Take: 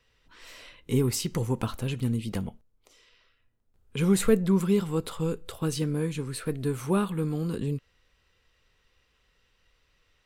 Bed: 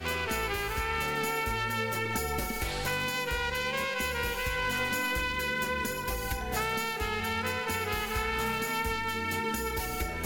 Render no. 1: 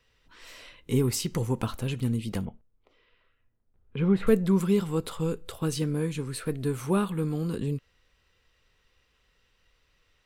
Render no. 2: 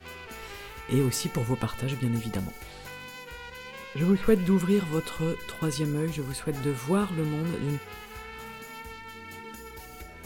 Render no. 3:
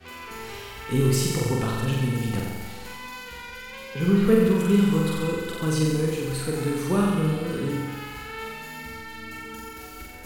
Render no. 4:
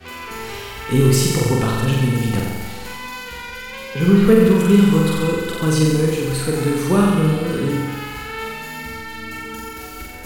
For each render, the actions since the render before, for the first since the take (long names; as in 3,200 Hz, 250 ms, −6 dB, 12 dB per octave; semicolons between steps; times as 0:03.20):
0:02.45–0:04.27: high-frequency loss of the air 410 metres
mix in bed −11 dB
flutter between parallel walls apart 7.7 metres, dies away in 1.3 s
level +7 dB; brickwall limiter −2 dBFS, peak gain reduction 2.5 dB